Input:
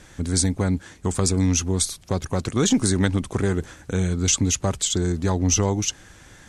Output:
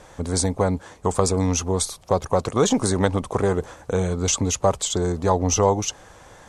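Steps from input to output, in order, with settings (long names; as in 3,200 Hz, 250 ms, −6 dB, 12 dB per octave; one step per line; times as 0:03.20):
flat-topped bell 720 Hz +11 dB
level −2 dB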